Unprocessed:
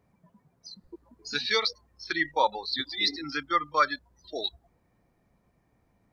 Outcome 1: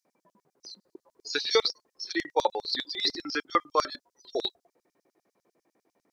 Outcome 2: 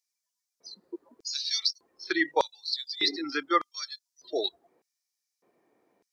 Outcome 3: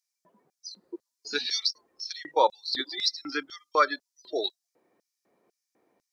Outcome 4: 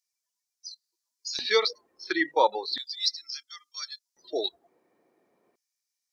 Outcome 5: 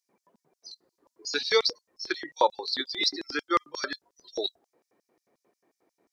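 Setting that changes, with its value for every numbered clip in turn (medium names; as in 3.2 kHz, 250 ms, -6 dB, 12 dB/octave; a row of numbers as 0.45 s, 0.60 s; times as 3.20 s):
LFO high-pass, rate: 10 Hz, 0.83 Hz, 2 Hz, 0.36 Hz, 5.6 Hz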